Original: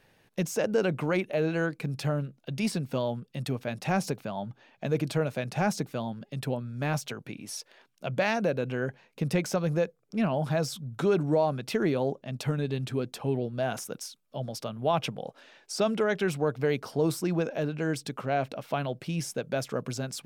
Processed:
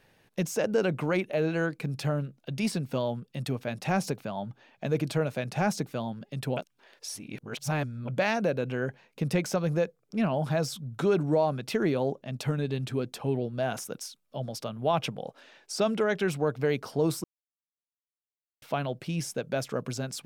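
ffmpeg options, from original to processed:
-filter_complex "[0:a]asplit=5[a][b][c][d][e];[a]atrim=end=6.572[f];[b]atrim=start=6.568:end=8.082,asetpts=PTS-STARTPTS,areverse[g];[c]atrim=start=8.078:end=17.24,asetpts=PTS-STARTPTS,afade=t=out:st=9.158:d=0.004:c=hsin[h];[d]atrim=start=17.24:end=18.62,asetpts=PTS-STARTPTS,volume=0[i];[e]atrim=start=18.62,asetpts=PTS-STARTPTS,afade=t=in:d=0.004:c=hsin[j];[f][g]acrossfade=d=0.004:c1=hsin:c2=hsin[k];[h][i][j]concat=n=3:v=0:a=1[l];[k][l]acrossfade=d=0.004:c1=hsin:c2=hsin"

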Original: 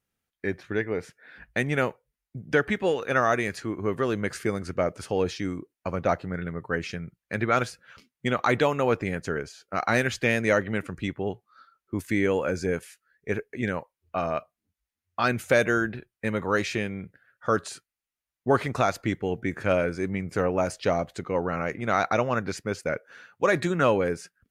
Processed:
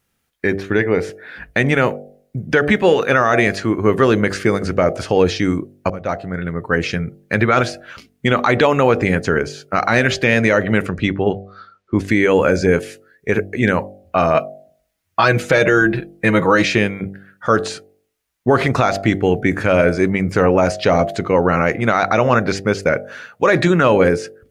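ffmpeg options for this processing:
-filter_complex "[0:a]asettb=1/sr,asplit=3[a][b][c];[a]atrim=end=10.894[d];[b]atrim=start=10.89:end=12.08,asetpts=PTS-STARTPTS,afade=t=in:d=0.004:c=qsin,afade=t=out:st=1.186:d=0.004:c=qsin,lowpass=5.1k[e];[c]atrim=start=12.076[f];[d][e]acrossfade=d=0.004:c1=hsin:c2=qsin[g];[g][f]acrossfade=d=0.004:c1=qsin:c2=hsin,asettb=1/sr,asplit=3[h][i][j];[h]atrim=end=14.344[k];[i]atrim=start=14.34:end=16.65,asetpts=PTS-STARTPTS,afade=t=in:d=0.004:c=qsin,afade=t=out:st=2.306:d=0.004:c=qsin,aecho=1:1:6.2:0.65,atrim=end_sample=101871[l];[j]atrim=start=16.646[m];[k][l]acrossfade=d=0.004:c1=hsin:c2=qsin[n];[n][m]acrossfade=d=0.004:c1=qsin:c2=hsin,asplit=2[o][p];[o]atrim=end=5.9,asetpts=PTS-STARTPTS,afade=t=out:st=5.896:d=0.004:c=hsin:silence=0.133352[q];[p]atrim=start=5.9,asetpts=PTS-STARTPTS,afade=t=in:d=1.05:silence=0.133352[r];[q][r]concat=n=2:v=0:a=1,acrossover=split=6300[s][t];[t]acompressor=threshold=-58dB:ratio=4:attack=1:release=60[u];[s][u]amix=inputs=2:normalize=0,bandreject=f=48.85:t=h:w=4,bandreject=f=97.7:t=h:w=4,bandreject=f=146.55:t=h:w=4,bandreject=f=195.4:t=h:w=4,bandreject=f=244.25:t=h:w=4,bandreject=f=293.1:t=h:w=4,bandreject=f=341.95:t=h:w=4,bandreject=f=390.8:t=h:w=4,bandreject=f=439.65:t=h:w=4,bandreject=f=488.5:t=h:w=4,bandreject=f=537.35:t=h:w=4,bandreject=f=586.2:t=h:w=4,bandreject=f=635.05:t=h:w=4,bandreject=f=683.9:t=h:w=4,bandreject=f=732.75:t=h:w=4,bandreject=f=781.6:t=h:w=4,alimiter=level_in=16dB:limit=-1dB:release=50:level=0:latency=1,volume=-2.5dB"

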